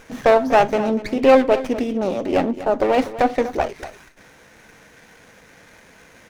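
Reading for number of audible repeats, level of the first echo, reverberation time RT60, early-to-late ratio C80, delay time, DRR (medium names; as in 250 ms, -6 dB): 1, -14.5 dB, no reverb, no reverb, 244 ms, no reverb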